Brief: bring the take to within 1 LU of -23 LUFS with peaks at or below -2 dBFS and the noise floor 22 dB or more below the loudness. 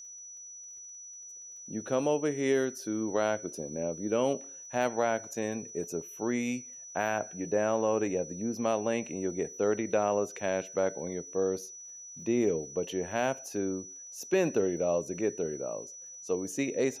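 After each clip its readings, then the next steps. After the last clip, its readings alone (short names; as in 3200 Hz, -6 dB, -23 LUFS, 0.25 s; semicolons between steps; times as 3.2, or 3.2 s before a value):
ticks 38/s; steady tone 5900 Hz; tone level -44 dBFS; loudness -31.5 LUFS; peak -15.0 dBFS; loudness target -23.0 LUFS
-> de-click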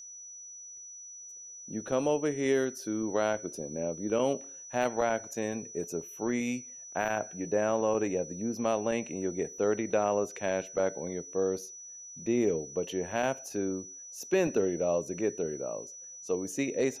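ticks 0/s; steady tone 5900 Hz; tone level -44 dBFS
-> notch 5900 Hz, Q 30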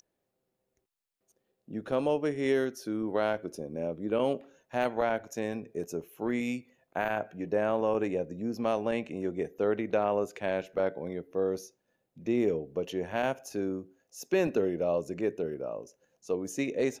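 steady tone none; loudness -32.0 LUFS; peak -15.0 dBFS; loudness target -23.0 LUFS
-> gain +9 dB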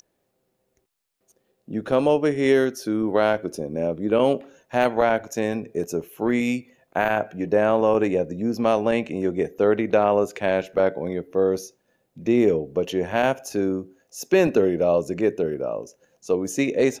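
loudness -23.0 LUFS; peak -6.0 dBFS; noise floor -73 dBFS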